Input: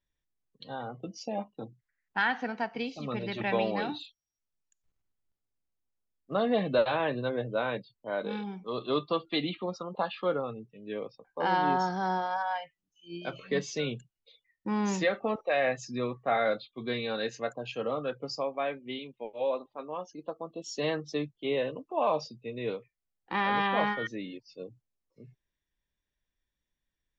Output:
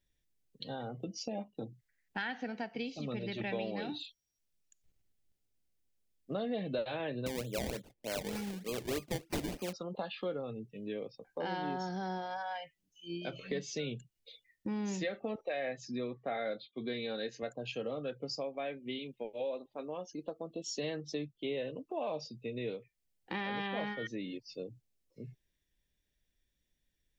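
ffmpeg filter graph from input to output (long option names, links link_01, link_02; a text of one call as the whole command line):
ffmpeg -i in.wav -filter_complex "[0:a]asettb=1/sr,asplit=3[link_01][link_02][link_03];[link_01]atrim=end=7.264[link_04];[link_02]atrim=start=7.26:end=9.73,asetpts=PTS-STARTPTS,afade=type=in:duration=0.004:curve=qsin,afade=type=out:start_time=2.466:duration=0.004:curve=qsin,equalizer=frequency=2300:width=1.4:gain=10.5,acrusher=samples=23:mix=1:aa=0.000001:lfo=1:lforange=23:lforate=3.3[link_05];[link_03]atrim=start=9.726[link_06];[link_04][link_05]acrossfade=duration=0.004:curve1=hsin:curve2=qsin[link_07];[link_07][link_06]acrossfade=duration=0.004:curve1=qsin:curve2=hsin,asettb=1/sr,asplit=3[link_08][link_09][link_10];[link_08]atrim=end=15.524[link_11];[link_09]atrim=start=15.52:end=17.43,asetpts=PTS-STARTPTS,afade=type=in:duration=0.004:curve=qsin,afade=type=out:start_time=1.906:duration=0.004:curve=qsin,highpass=150,lowpass=5100,bandreject=frequency=2700:width=10[link_12];[link_10]atrim=start=17.426[link_13];[link_11][link_12]acrossfade=duration=0.004:curve1=hsin:curve2=qsin[link_14];[link_14][link_13]acrossfade=duration=0.004:curve1=qsin:curve2=hsin,equalizer=frequency=1100:width_type=o:width=0.93:gain=-11.5,acompressor=threshold=-45dB:ratio=2.5,volume=5.5dB" out.wav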